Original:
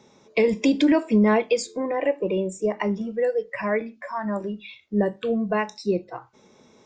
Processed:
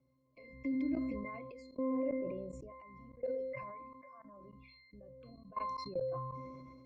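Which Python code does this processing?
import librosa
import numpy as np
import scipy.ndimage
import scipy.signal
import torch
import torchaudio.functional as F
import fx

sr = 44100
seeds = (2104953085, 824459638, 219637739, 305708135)

y = fx.high_shelf(x, sr, hz=7000.0, db=11.5)
y = fx.octave_resonator(y, sr, note='C', decay_s=0.64)
y = fx.level_steps(y, sr, step_db=21)
y = fx.low_shelf(y, sr, hz=72.0, db=10.5)
y = fx.sustainer(y, sr, db_per_s=28.0)
y = y * librosa.db_to_amplitude(7.5)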